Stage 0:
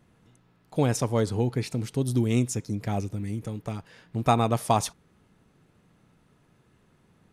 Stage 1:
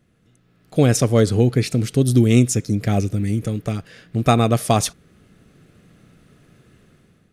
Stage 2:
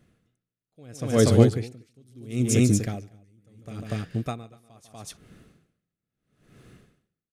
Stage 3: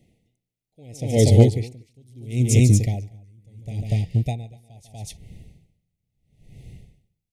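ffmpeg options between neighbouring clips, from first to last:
ffmpeg -i in.wav -af "equalizer=frequency=920:width_type=o:width=0.38:gain=-14.5,dynaudnorm=framelen=240:gausssize=5:maxgain=11dB" out.wav
ffmpeg -i in.wav -af "aecho=1:1:147|241:0.224|0.501,aeval=exprs='val(0)*pow(10,-39*(0.5-0.5*cos(2*PI*0.75*n/s))/20)':channel_layout=same" out.wav
ffmpeg -i in.wav -af "asuperstop=centerf=1300:order=20:qfactor=1.3,asubboost=boost=7:cutoff=110,volume=2dB" out.wav

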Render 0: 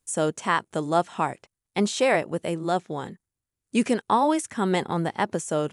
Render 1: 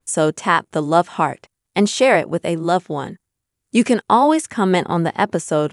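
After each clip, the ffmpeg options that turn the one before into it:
ffmpeg -i in.wav -af "adynamicequalizer=threshold=0.00794:dfrequency=3600:dqfactor=0.7:tfrequency=3600:tqfactor=0.7:attack=5:release=100:ratio=0.375:range=2:mode=cutabove:tftype=highshelf,volume=7.5dB" out.wav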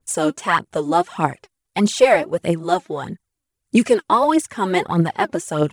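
ffmpeg -i in.wav -af "aphaser=in_gain=1:out_gain=1:delay=3.8:decay=0.65:speed=1.6:type=triangular,volume=-4dB" out.wav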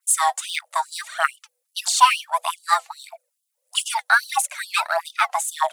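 ffmpeg -i in.wav -af "highshelf=frequency=4000:gain=9.5,afreqshift=490,afftfilt=real='re*gte(b*sr/1024,270*pow(2900/270,0.5+0.5*sin(2*PI*2.4*pts/sr)))':imag='im*gte(b*sr/1024,270*pow(2900/270,0.5+0.5*sin(2*PI*2.4*pts/sr)))':win_size=1024:overlap=0.75,volume=-1dB" out.wav

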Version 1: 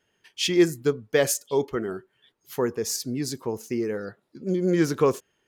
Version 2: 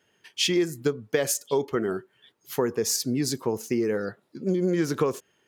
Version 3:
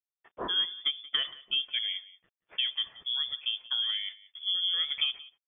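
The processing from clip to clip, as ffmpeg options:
ffmpeg -i in.wav -af "highpass=89,acompressor=threshold=-24dB:ratio=10,volume=4dB" out.wav
ffmpeg -i in.wav -af "aresample=11025,aeval=exprs='sgn(val(0))*max(abs(val(0))-0.00168,0)':channel_layout=same,aresample=44100,aecho=1:1:179:0.106,lowpass=frequency=3100:width_type=q:width=0.5098,lowpass=frequency=3100:width_type=q:width=0.6013,lowpass=frequency=3100:width_type=q:width=0.9,lowpass=frequency=3100:width_type=q:width=2.563,afreqshift=-3600,volume=-5.5dB" out.wav

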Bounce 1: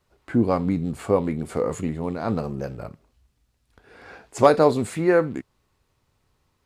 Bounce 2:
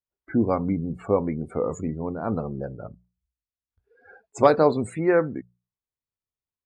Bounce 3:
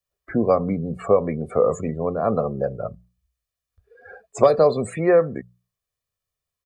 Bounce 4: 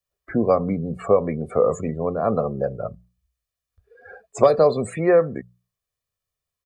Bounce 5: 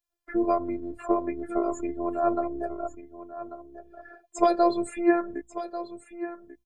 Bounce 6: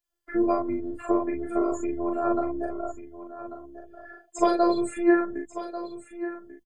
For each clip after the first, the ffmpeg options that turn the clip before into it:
ffmpeg -i in.wav -af "afftdn=noise_reduction=30:noise_floor=-37,bandreject=frequency=60:width_type=h:width=6,bandreject=frequency=120:width_type=h:width=6,bandreject=frequency=180:width_type=h:width=6,volume=-1.5dB" out.wav
ffmpeg -i in.wav -filter_complex "[0:a]aecho=1:1:1.7:0.63,acrossover=split=180|530|1200|4400[link_01][link_02][link_03][link_04][link_05];[link_01]acompressor=threshold=-45dB:ratio=4[link_06];[link_02]acompressor=threshold=-24dB:ratio=4[link_07];[link_03]acompressor=threshold=-27dB:ratio=4[link_08];[link_04]acompressor=threshold=-43dB:ratio=4[link_09];[link_05]acompressor=threshold=-46dB:ratio=4[link_10];[link_06][link_07][link_08][link_09][link_10]amix=inputs=5:normalize=0,volume=7dB" out.wav
ffmpeg -i in.wav -af anull out.wav
ffmpeg -i in.wav -af "afftfilt=real='hypot(re,im)*cos(PI*b)':imag='0':win_size=512:overlap=0.75,aecho=1:1:1141:0.224" out.wav
ffmpeg -i in.wav -filter_complex "[0:a]asplit=2[link_01][link_02];[link_02]adelay=40,volume=-3dB[link_03];[link_01][link_03]amix=inputs=2:normalize=0" out.wav

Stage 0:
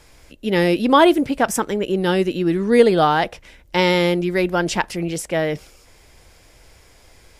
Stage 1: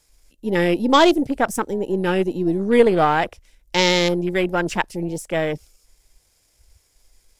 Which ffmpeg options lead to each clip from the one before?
ffmpeg -i in.wav -af "aeval=exprs='if(lt(val(0),0),0.708*val(0),val(0))':channel_layout=same,afwtdn=0.0355,bass=frequency=250:gain=0,treble=frequency=4000:gain=13" out.wav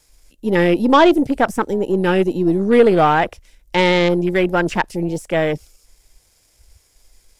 ffmpeg -i in.wav -filter_complex "[0:a]acrossover=split=3200[link_01][link_02];[link_02]acompressor=threshold=-38dB:ratio=4:attack=1:release=60[link_03];[link_01][link_03]amix=inputs=2:normalize=0,asoftclip=type=tanh:threshold=-7.5dB,volume=4.5dB" out.wav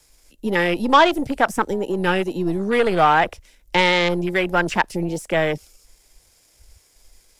ffmpeg -i in.wav -filter_complex "[0:a]acrossover=split=140|660|3700[link_01][link_02][link_03][link_04];[link_01]tremolo=f=2.4:d=0.66[link_05];[link_02]acompressor=threshold=-24dB:ratio=6[link_06];[link_05][link_06][link_03][link_04]amix=inputs=4:normalize=0,volume=1dB" out.wav

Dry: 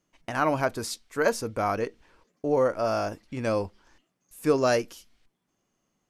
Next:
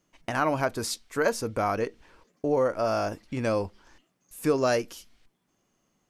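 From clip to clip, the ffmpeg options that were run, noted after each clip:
ffmpeg -i in.wav -af "acompressor=threshold=-32dB:ratio=1.5,volume=3.5dB" out.wav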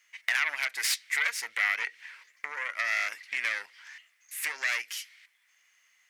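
ffmpeg -i in.wav -af "acompressor=threshold=-29dB:ratio=12,aeval=exprs='0.1*(cos(1*acos(clip(val(0)/0.1,-1,1)))-cos(1*PI/2))+0.0447*(cos(4*acos(clip(val(0)/0.1,-1,1)))-cos(4*PI/2))+0.0224*(cos(5*acos(clip(val(0)/0.1,-1,1)))-cos(5*PI/2))':channel_layout=same,highpass=frequency=2000:width_type=q:width=4.9" out.wav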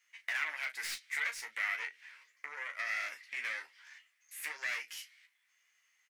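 ffmpeg -i in.wav -filter_complex "[0:a]acrossover=split=340|2700[link_01][link_02][link_03];[link_03]asoftclip=type=tanh:threshold=-32dB[link_04];[link_01][link_02][link_04]amix=inputs=3:normalize=0,aecho=1:1:13|36:0.562|0.299,volume=-8.5dB" out.wav

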